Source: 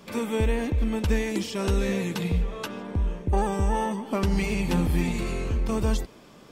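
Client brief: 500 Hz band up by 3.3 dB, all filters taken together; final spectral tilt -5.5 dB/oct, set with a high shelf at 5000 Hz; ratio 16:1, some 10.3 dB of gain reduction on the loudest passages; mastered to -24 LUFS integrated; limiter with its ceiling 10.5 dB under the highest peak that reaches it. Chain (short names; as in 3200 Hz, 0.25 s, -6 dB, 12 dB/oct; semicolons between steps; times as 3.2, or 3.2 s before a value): bell 500 Hz +4 dB; high shelf 5000 Hz +5.5 dB; compressor 16:1, threshold -28 dBFS; gain +13.5 dB; limiter -14.5 dBFS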